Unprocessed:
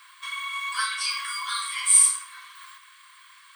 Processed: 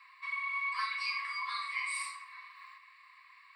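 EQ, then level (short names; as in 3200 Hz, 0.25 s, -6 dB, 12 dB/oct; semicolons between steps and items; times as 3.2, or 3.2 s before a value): running mean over 7 samples; HPF 1100 Hz; fixed phaser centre 2200 Hz, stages 8; 0.0 dB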